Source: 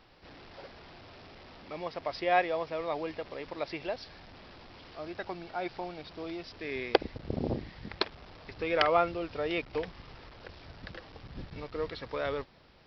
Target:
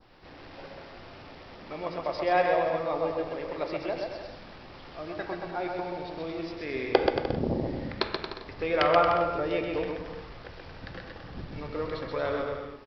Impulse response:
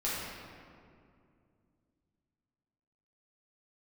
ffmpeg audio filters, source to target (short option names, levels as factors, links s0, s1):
-filter_complex "[0:a]aecho=1:1:130|227.5|300.6|355.5|396.6:0.631|0.398|0.251|0.158|0.1,adynamicequalizer=threshold=0.00447:dfrequency=2500:dqfactor=1:tfrequency=2500:tqfactor=1:attack=5:release=100:ratio=0.375:range=2.5:mode=cutabove:tftype=bell,asplit=2[s0][s1];[1:a]atrim=start_sample=2205,atrim=end_sample=6615,lowpass=2900[s2];[s1][s2]afir=irnorm=-1:irlink=0,volume=0.376[s3];[s0][s3]amix=inputs=2:normalize=0"